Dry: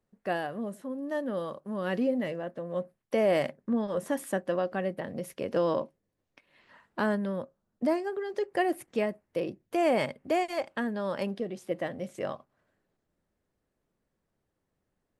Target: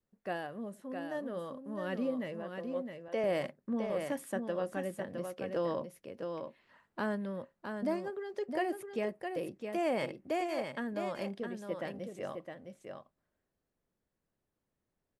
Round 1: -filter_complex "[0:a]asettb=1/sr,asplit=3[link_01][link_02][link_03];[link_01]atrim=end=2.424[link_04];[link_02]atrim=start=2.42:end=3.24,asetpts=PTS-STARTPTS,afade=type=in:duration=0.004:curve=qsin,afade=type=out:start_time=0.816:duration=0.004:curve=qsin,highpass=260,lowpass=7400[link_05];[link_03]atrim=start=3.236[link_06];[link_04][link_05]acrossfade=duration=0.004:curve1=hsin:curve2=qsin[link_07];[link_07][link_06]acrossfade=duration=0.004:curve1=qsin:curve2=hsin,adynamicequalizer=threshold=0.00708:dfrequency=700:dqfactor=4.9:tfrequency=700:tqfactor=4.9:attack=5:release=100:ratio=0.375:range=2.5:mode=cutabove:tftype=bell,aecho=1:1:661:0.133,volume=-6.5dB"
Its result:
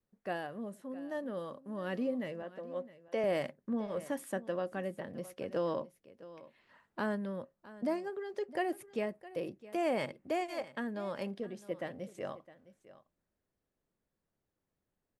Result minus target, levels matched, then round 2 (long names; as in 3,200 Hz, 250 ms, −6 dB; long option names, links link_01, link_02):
echo-to-direct −11.5 dB
-filter_complex "[0:a]asettb=1/sr,asplit=3[link_01][link_02][link_03];[link_01]atrim=end=2.424[link_04];[link_02]atrim=start=2.42:end=3.24,asetpts=PTS-STARTPTS,afade=type=in:duration=0.004:curve=qsin,afade=type=out:start_time=0.816:duration=0.004:curve=qsin,highpass=260,lowpass=7400[link_05];[link_03]atrim=start=3.236[link_06];[link_04][link_05]acrossfade=duration=0.004:curve1=hsin:curve2=qsin[link_07];[link_07][link_06]acrossfade=duration=0.004:curve1=qsin:curve2=hsin,adynamicequalizer=threshold=0.00708:dfrequency=700:dqfactor=4.9:tfrequency=700:tqfactor=4.9:attack=5:release=100:ratio=0.375:range=2.5:mode=cutabove:tftype=bell,aecho=1:1:661:0.501,volume=-6.5dB"